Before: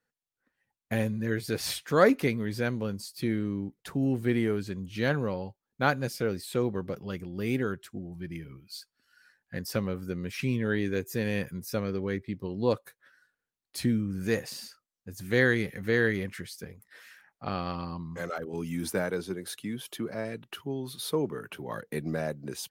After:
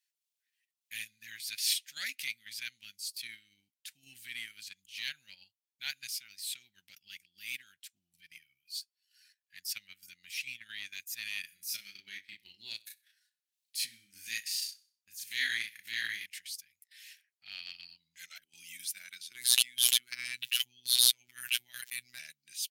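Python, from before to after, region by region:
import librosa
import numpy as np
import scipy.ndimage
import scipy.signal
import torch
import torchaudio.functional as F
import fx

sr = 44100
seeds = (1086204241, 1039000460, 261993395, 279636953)

y = fx.chain(x, sr, fx.peak_eq(hz=360.0, db=7.0, octaves=1.0),
    fx.doubler(ms=35.0, db=-2.5),
    fx.echo_feedback(ms=63, feedback_pct=44, wet_db=-14.5), at=(11.4, 16.26))
y = fx.chain(y, sr, fx.robotise(hz=123.0),
    fx.env_flatten(amount_pct=100), at=(19.31, 22.19))
y = scipy.signal.sosfilt(scipy.signal.cheby2(4, 40, 1200.0, 'highpass', fs=sr, output='sos'), y)
y = fx.transient(y, sr, attack_db=-7, sustain_db=-11)
y = F.gain(torch.from_numpy(y), 6.0).numpy()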